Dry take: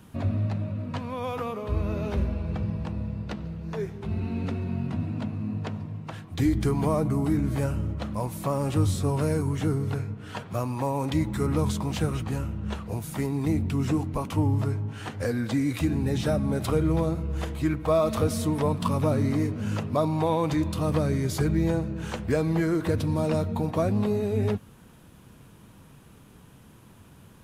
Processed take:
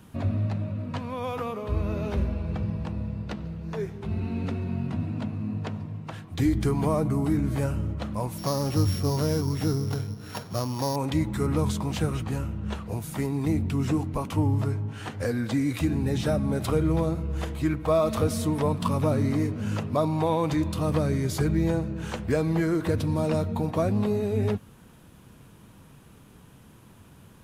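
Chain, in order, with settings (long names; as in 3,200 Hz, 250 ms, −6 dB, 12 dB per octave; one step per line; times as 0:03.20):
0:08.38–0:10.96: samples sorted by size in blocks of 8 samples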